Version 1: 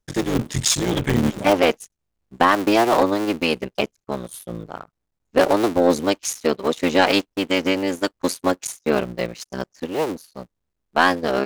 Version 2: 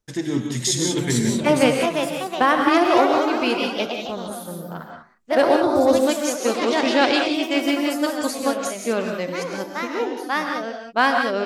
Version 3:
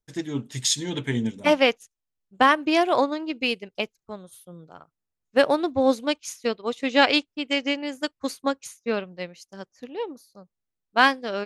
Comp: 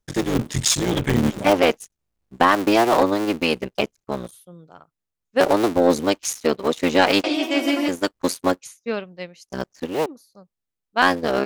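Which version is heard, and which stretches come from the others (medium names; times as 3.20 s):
1
4.31–5.40 s: from 3
7.24–7.88 s: from 2
8.60–9.48 s: from 3
10.06–11.02 s: from 3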